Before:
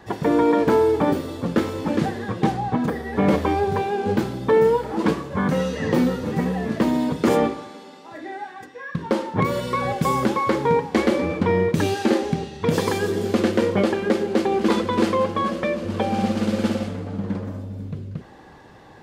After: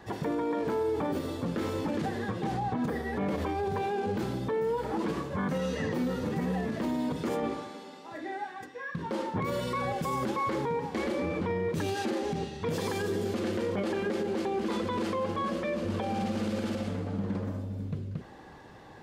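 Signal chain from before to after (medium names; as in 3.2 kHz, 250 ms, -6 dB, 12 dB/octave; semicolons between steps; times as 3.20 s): peak limiter -19.5 dBFS, peak gain reduction 11.5 dB; trim -3.5 dB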